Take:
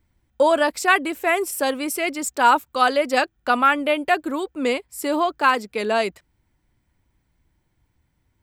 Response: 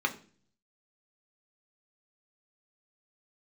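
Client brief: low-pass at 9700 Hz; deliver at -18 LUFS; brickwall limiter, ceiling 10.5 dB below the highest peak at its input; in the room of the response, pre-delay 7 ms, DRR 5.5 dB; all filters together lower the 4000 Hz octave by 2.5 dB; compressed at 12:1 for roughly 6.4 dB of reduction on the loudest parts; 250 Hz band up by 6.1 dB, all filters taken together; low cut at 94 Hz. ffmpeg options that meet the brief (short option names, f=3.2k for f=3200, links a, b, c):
-filter_complex "[0:a]highpass=94,lowpass=9.7k,equalizer=f=250:t=o:g=7.5,equalizer=f=4k:t=o:g=-3.5,acompressor=threshold=-17dB:ratio=12,alimiter=limit=-19dB:level=0:latency=1,asplit=2[a][b];[1:a]atrim=start_sample=2205,adelay=7[c];[b][c]afir=irnorm=-1:irlink=0,volume=-14dB[d];[a][d]amix=inputs=2:normalize=0,volume=8dB"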